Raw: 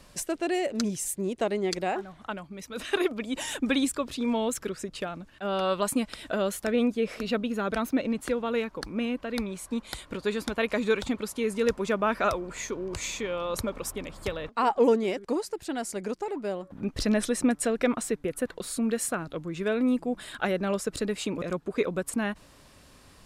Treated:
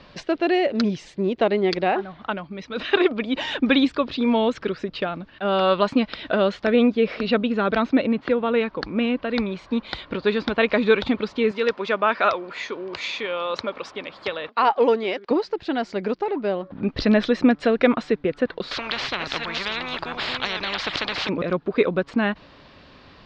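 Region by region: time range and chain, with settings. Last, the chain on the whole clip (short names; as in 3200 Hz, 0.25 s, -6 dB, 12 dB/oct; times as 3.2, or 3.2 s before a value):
8.06–8.61 HPF 67 Hz + air absorption 150 m
11.51–15.31 HPF 630 Hz 6 dB/oct + high shelf 9000 Hz +5.5 dB
18.71–21.29 reverse delay 0.472 s, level -12 dB + bell 6600 Hz +4.5 dB 0.32 oct + spectral compressor 10:1
whole clip: steep low-pass 4500 Hz 36 dB/oct; low shelf 74 Hz -9.5 dB; gain +8 dB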